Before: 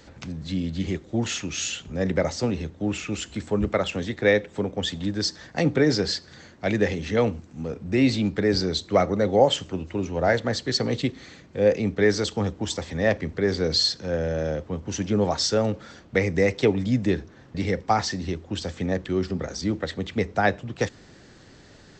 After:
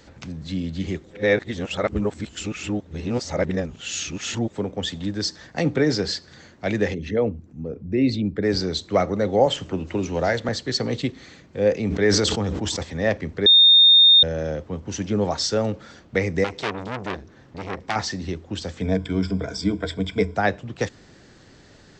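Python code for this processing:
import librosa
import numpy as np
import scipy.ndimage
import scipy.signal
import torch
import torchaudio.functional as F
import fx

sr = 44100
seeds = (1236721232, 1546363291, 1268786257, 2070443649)

y = fx.envelope_sharpen(x, sr, power=1.5, at=(6.93, 8.42), fade=0.02)
y = fx.band_squash(y, sr, depth_pct=70, at=(9.46, 10.49))
y = fx.sustainer(y, sr, db_per_s=28.0, at=(11.77, 12.83))
y = fx.transformer_sat(y, sr, knee_hz=2600.0, at=(16.44, 17.96))
y = fx.ripple_eq(y, sr, per_octave=1.7, db=15, at=(18.81, 20.36))
y = fx.edit(y, sr, fx.reverse_span(start_s=1.11, length_s=3.39),
    fx.bleep(start_s=13.46, length_s=0.77, hz=3660.0, db=-9.0), tone=tone)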